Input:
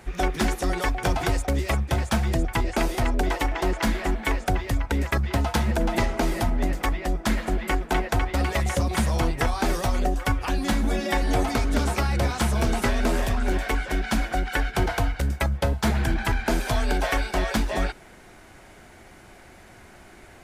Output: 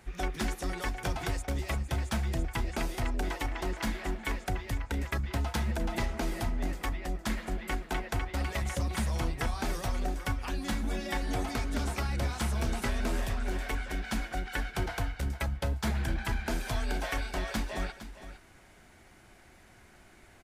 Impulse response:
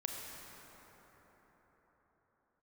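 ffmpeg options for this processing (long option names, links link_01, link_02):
-filter_complex "[0:a]equalizer=frequency=540:width=0.58:gain=-3.5,asplit=2[link_01][link_02];[link_02]aecho=0:1:460:0.224[link_03];[link_01][link_03]amix=inputs=2:normalize=0,volume=-7.5dB"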